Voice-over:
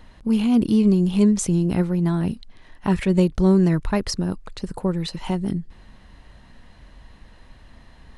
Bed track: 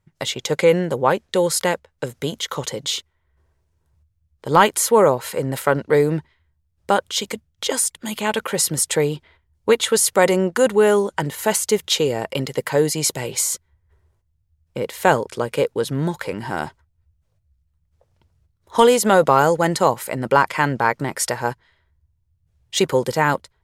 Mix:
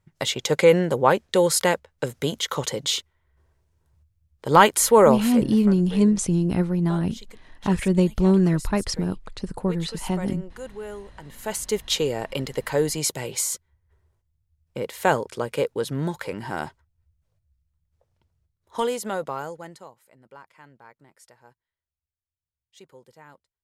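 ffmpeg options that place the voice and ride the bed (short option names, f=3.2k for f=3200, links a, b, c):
-filter_complex "[0:a]adelay=4800,volume=-1.5dB[a];[1:a]volume=16dB,afade=t=out:st=5.22:d=0.36:silence=0.0944061,afade=t=in:st=11.22:d=0.67:silence=0.149624,afade=t=out:st=17.3:d=2.61:silence=0.0473151[b];[a][b]amix=inputs=2:normalize=0"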